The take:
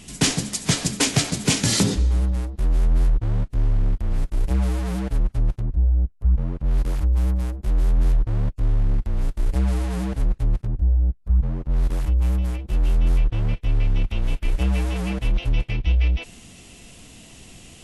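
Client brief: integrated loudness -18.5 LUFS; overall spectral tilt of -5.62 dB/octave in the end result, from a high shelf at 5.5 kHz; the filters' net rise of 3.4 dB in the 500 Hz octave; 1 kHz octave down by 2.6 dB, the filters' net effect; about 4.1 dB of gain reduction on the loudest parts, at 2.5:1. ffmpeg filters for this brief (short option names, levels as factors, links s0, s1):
-af "equalizer=f=500:t=o:g=5.5,equalizer=f=1000:t=o:g=-5.5,highshelf=f=5500:g=-8,acompressor=threshold=0.0891:ratio=2.5,volume=2.66"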